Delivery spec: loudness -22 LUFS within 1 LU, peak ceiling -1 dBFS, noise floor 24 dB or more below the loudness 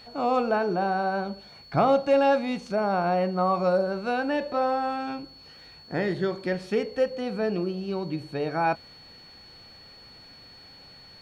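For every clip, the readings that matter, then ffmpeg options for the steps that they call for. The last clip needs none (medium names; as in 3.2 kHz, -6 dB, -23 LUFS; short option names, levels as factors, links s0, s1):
steady tone 4.4 kHz; tone level -48 dBFS; loudness -26.5 LUFS; peak level -11.5 dBFS; loudness target -22.0 LUFS
-> -af "bandreject=f=4400:w=30"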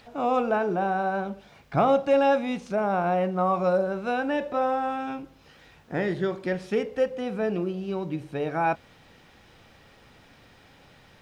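steady tone not found; loudness -26.5 LUFS; peak level -11.5 dBFS; loudness target -22.0 LUFS
-> -af "volume=1.68"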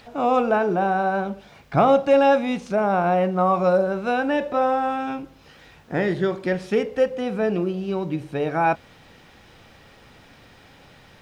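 loudness -22.0 LUFS; peak level -7.0 dBFS; noise floor -51 dBFS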